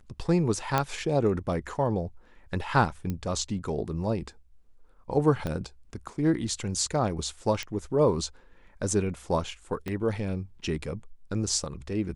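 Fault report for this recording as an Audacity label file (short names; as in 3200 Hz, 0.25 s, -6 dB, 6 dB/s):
0.780000	0.780000	pop -9 dBFS
3.100000	3.100000	pop -19 dBFS
5.470000	5.470000	pop -19 dBFS
7.630000	7.630000	pop -19 dBFS
9.880000	9.880000	pop -20 dBFS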